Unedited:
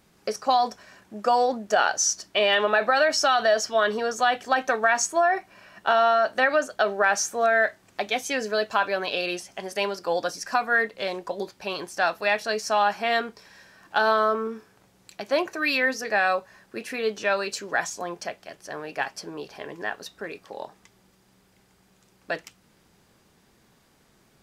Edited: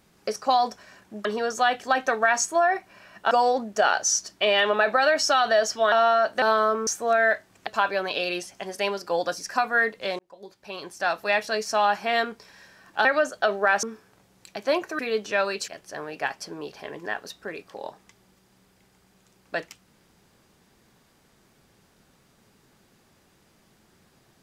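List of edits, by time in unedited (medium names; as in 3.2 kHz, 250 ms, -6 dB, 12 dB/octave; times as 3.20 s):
3.86–5.92 s: move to 1.25 s
6.42–7.20 s: swap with 14.02–14.47 s
8.00–8.64 s: delete
11.16–12.24 s: fade in
15.63–16.91 s: delete
17.60–18.44 s: delete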